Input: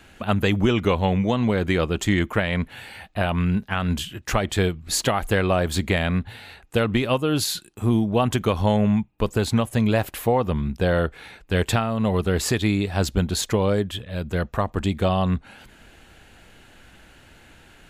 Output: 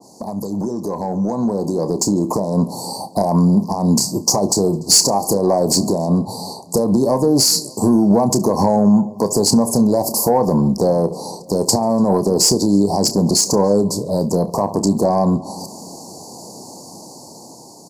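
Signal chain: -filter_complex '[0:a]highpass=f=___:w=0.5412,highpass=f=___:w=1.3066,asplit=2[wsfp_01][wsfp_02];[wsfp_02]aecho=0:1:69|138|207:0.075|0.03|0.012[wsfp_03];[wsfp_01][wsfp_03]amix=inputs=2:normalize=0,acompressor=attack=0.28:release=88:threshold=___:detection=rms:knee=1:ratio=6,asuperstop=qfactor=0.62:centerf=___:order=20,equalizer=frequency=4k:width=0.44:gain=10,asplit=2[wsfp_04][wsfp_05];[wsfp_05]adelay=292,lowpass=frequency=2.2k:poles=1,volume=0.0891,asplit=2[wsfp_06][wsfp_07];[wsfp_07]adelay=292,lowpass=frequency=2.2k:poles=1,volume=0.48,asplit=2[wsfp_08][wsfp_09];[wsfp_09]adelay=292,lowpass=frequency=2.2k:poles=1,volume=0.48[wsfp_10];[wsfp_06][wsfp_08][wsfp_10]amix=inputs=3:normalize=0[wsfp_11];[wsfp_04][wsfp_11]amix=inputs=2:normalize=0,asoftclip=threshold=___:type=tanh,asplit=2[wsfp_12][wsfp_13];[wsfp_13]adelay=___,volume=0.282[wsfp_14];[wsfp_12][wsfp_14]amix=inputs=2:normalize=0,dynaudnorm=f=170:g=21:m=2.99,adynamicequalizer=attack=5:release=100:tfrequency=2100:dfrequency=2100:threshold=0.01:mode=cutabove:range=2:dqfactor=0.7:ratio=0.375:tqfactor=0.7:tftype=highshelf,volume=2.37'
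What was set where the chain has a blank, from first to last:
150, 150, 0.0562, 2200, 0.119, 30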